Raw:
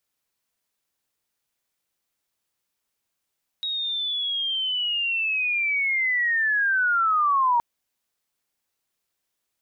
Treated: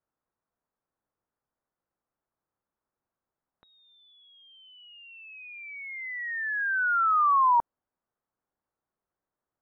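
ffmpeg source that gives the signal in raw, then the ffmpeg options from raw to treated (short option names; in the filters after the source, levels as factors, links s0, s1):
-f lavfi -i "aevalsrc='pow(10,(-25+8*t/3.97)/20)*sin(2*PI*(3800*t-2870*t*t/(2*3.97)))':d=3.97:s=44100"
-af "lowpass=f=1400:w=0.5412,lowpass=f=1400:w=1.3066"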